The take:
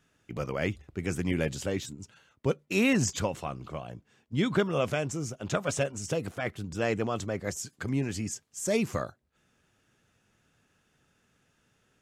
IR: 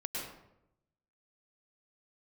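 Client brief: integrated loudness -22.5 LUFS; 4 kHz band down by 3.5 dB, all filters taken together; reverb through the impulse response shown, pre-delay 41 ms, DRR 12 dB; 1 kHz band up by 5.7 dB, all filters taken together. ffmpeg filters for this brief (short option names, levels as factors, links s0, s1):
-filter_complex "[0:a]equalizer=f=1000:t=o:g=8,equalizer=f=4000:t=o:g=-5.5,asplit=2[s0][s1];[1:a]atrim=start_sample=2205,adelay=41[s2];[s1][s2]afir=irnorm=-1:irlink=0,volume=0.188[s3];[s0][s3]amix=inputs=2:normalize=0,volume=2.37"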